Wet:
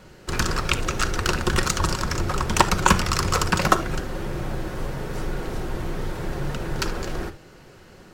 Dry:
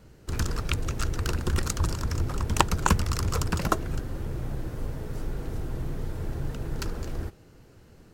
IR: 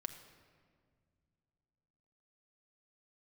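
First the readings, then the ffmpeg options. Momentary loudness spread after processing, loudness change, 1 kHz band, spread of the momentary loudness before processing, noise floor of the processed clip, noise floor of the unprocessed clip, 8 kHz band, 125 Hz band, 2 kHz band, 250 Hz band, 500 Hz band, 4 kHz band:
11 LU, +5.5 dB, +8.0 dB, 10 LU, -48 dBFS, -54 dBFS, +7.0 dB, +1.0 dB, +10.0 dB, +5.5 dB, +7.5 dB, +8.5 dB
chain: -filter_complex "[0:a]acontrast=81,asplit=2[a][b];[b]highpass=f=720:p=1,volume=9dB,asoftclip=type=tanh:threshold=-1.5dB[c];[a][c]amix=inputs=2:normalize=0,lowpass=f=4.9k:p=1,volume=-6dB[d];[1:a]atrim=start_sample=2205,afade=t=out:st=0.13:d=0.01,atrim=end_sample=6174[e];[d][e]afir=irnorm=-1:irlink=0,volume=3dB"

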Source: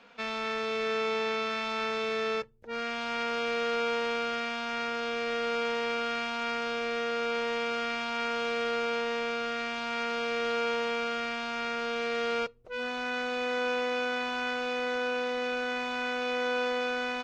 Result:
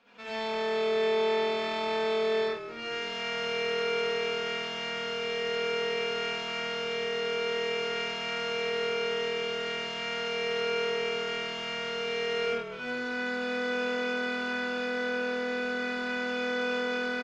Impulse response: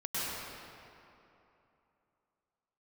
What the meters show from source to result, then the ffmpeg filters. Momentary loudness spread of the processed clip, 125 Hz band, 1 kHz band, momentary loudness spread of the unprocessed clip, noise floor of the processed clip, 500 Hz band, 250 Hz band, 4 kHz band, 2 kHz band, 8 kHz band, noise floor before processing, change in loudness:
4 LU, n/a, -3.5 dB, 3 LU, -36 dBFS, +1.5 dB, 0.0 dB, +2.0 dB, +0.5 dB, +0.5 dB, -35 dBFS, +0.5 dB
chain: -filter_complex "[0:a]asplit=5[a][b][c][d][e];[b]adelay=209,afreqshift=-41,volume=-12dB[f];[c]adelay=418,afreqshift=-82,volume=-20.6dB[g];[d]adelay=627,afreqshift=-123,volume=-29.3dB[h];[e]adelay=836,afreqshift=-164,volume=-37.9dB[i];[a][f][g][h][i]amix=inputs=5:normalize=0[j];[1:a]atrim=start_sample=2205,afade=t=out:st=0.37:d=0.01,atrim=end_sample=16758,asetrate=79380,aresample=44100[k];[j][k]afir=irnorm=-1:irlink=0"

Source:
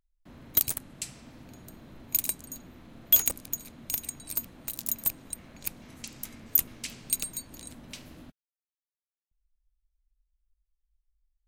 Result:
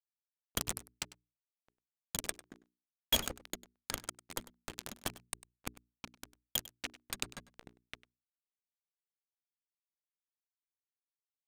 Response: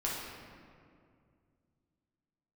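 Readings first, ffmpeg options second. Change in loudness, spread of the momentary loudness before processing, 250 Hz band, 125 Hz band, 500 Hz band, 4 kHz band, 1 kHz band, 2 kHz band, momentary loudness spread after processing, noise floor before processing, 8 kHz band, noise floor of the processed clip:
-11.0 dB, 20 LU, -4.5 dB, -4.5 dB, +1.0 dB, +1.0 dB, +2.5 dB, +0.5 dB, 20 LU, under -85 dBFS, -9.0 dB, under -85 dBFS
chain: -filter_complex "[0:a]aeval=exprs='val(0)*gte(abs(val(0)),0.0266)':c=same,alimiter=limit=-13dB:level=0:latency=1:release=154,bandreject=f=60:t=h:w=6,bandreject=f=120:t=h:w=6,bandreject=f=180:t=h:w=6,bandreject=f=240:t=h:w=6,bandreject=f=300:t=h:w=6,bandreject=f=360:t=h:w=6,bandreject=f=420:t=h:w=6,adynamicsmooth=sensitivity=5.5:basefreq=1.1k,asplit=2[a][b];[b]aecho=0:1:99:0.119[c];[a][c]amix=inputs=2:normalize=0,volume=4.5dB"

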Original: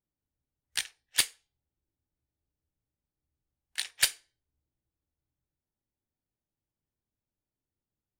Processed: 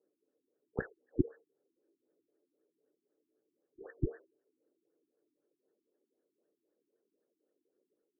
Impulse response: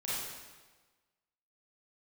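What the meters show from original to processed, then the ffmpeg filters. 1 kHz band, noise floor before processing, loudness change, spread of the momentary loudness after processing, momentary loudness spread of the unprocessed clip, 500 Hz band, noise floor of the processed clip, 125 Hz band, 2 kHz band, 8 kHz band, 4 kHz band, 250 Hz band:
-7.5 dB, under -85 dBFS, -9.0 dB, 18 LU, 9 LU, +14.0 dB, under -85 dBFS, +18.5 dB, -15.0 dB, under -40 dB, under -40 dB, n/a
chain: -filter_complex "[0:a]equalizer=f=2.9k:w=1.2:g=13.5,acrossover=split=350[a][b];[a]aeval=exprs='val(0)*gte(abs(val(0)),0.00112)':c=same[c];[c][b]amix=inputs=2:normalize=0,lowshelf=f=640:t=q:w=3:g=12,aphaser=in_gain=1:out_gain=1:delay=3.9:decay=0.2:speed=1.4:type=sinusoidal,afftfilt=real='re*lt(b*sr/1024,360*pow(1900/360,0.5+0.5*sin(2*PI*3.9*pts/sr)))':imag='im*lt(b*sr/1024,360*pow(1900/360,0.5+0.5*sin(2*PI*3.9*pts/sr)))':win_size=1024:overlap=0.75,volume=7dB"

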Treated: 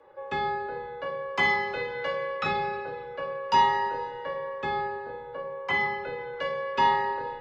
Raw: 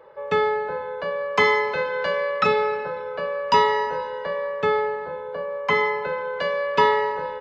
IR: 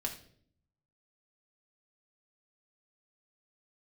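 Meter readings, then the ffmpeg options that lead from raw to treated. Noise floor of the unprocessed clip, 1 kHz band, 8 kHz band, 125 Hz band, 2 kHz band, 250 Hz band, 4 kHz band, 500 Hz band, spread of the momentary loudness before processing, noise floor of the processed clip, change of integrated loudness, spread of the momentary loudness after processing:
-33 dBFS, -3.0 dB, n/a, -3.5 dB, -4.5 dB, -4.0 dB, -4.5 dB, -10.0 dB, 10 LU, -40 dBFS, -5.5 dB, 12 LU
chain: -filter_complex "[0:a]afreqshift=-26[a];[1:a]atrim=start_sample=2205,asetrate=52920,aresample=44100[b];[a][b]afir=irnorm=-1:irlink=0,volume=-5dB"

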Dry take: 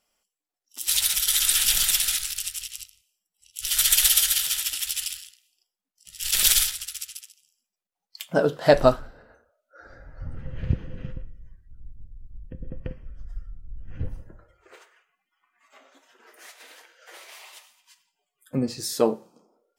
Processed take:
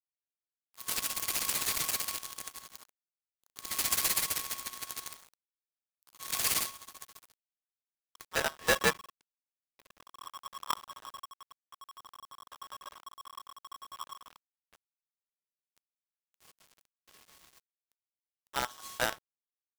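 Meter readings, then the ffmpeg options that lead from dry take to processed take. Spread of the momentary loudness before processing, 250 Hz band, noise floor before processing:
21 LU, -16.5 dB, under -85 dBFS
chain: -af "acrusher=bits=4:dc=4:mix=0:aa=0.000001,aeval=exprs='(tanh(2*val(0)+0.6)-tanh(0.6))/2':c=same,aeval=exprs='val(0)*sgn(sin(2*PI*1100*n/s))':c=same,volume=-8.5dB"

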